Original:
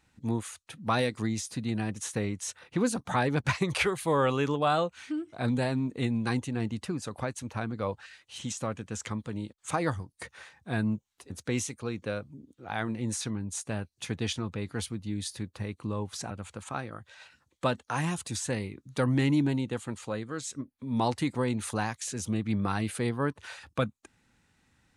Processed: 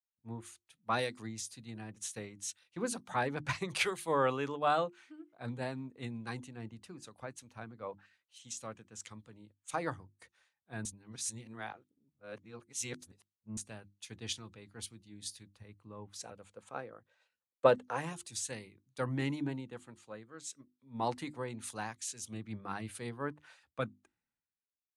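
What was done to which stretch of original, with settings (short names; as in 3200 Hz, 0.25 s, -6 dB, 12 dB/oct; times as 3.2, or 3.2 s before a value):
10.85–13.57 reverse
16.16–18.13 bell 490 Hz +10.5 dB 0.62 oct
whole clip: low shelf 370 Hz -5 dB; notches 50/100/150/200/250/300/350 Hz; three-band expander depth 100%; gain -8.5 dB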